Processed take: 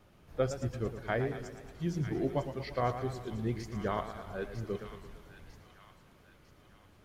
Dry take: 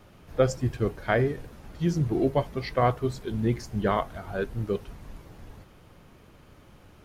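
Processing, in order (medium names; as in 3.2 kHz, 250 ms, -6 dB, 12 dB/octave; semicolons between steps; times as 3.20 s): feedback echo behind a high-pass 950 ms, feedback 45%, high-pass 1.7 kHz, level -8.5 dB; modulated delay 114 ms, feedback 61%, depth 110 cents, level -10.5 dB; trim -8.5 dB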